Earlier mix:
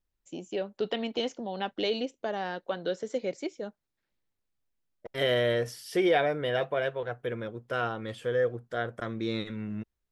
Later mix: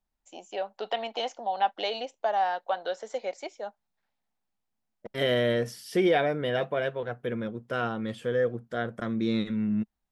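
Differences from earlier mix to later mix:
first voice: add resonant high-pass 760 Hz, resonance Q 3.4; master: add peaking EQ 210 Hz +9.5 dB 0.68 oct

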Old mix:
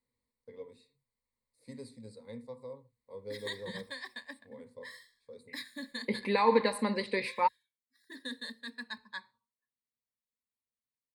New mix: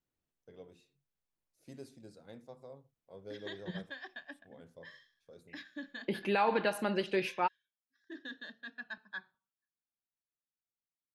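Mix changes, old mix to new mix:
background: add distance through air 200 m; master: remove rippled EQ curve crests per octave 0.96, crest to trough 17 dB

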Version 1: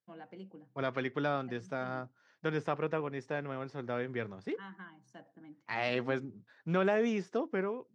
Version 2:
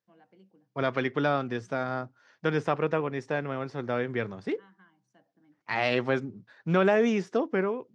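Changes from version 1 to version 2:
first voice -10.0 dB; second voice +6.5 dB

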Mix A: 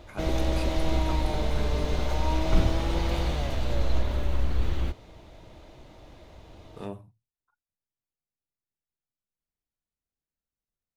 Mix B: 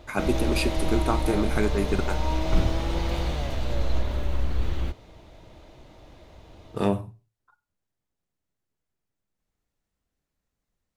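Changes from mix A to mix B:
speech +10.5 dB; reverb: on, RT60 0.35 s

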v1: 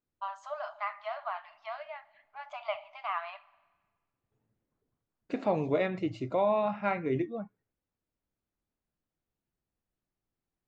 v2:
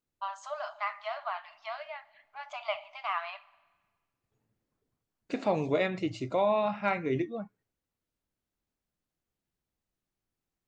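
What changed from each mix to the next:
master: add treble shelf 3.5 kHz +12 dB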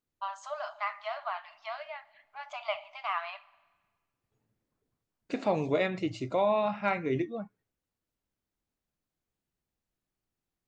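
no change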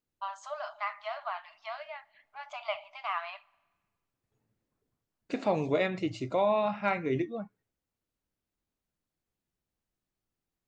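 first voice: send -6.5 dB

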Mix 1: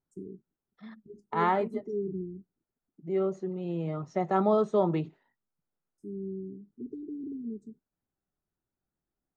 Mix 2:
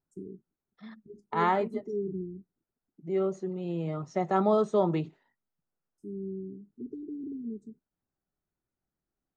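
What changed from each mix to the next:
second voice: add treble shelf 5.6 kHz +9 dB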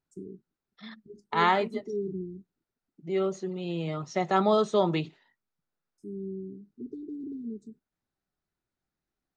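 master: add peaking EQ 3.8 kHz +12.5 dB 2.1 oct

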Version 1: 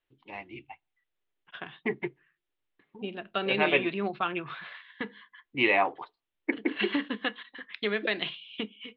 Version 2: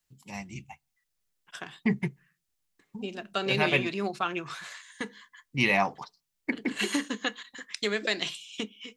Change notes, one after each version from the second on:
first voice: add resonant low shelf 250 Hz +8.5 dB, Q 3; master: remove steep low-pass 3.6 kHz 48 dB/octave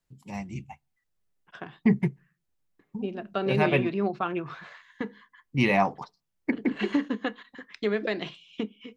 second voice: add distance through air 210 m; master: add tilt shelf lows +5.5 dB, about 1.4 kHz

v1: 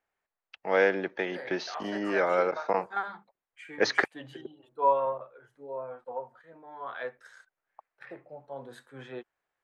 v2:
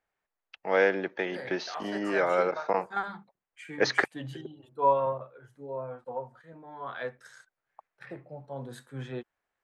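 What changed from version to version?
second voice: add tone controls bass +13 dB, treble +7 dB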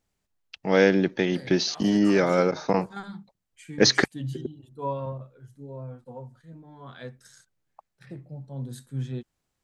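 second voice -9.5 dB; master: remove three-band isolator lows -19 dB, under 450 Hz, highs -16 dB, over 2.5 kHz

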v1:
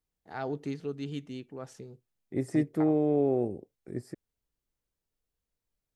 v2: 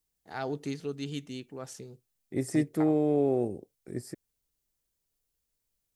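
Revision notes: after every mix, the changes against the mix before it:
master: add treble shelf 3.8 kHz +12 dB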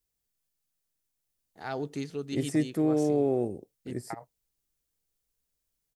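first voice: entry +1.30 s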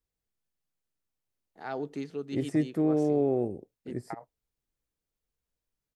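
first voice: add high-pass 180 Hz; master: add treble shelf 3.8 kHz -12 dB

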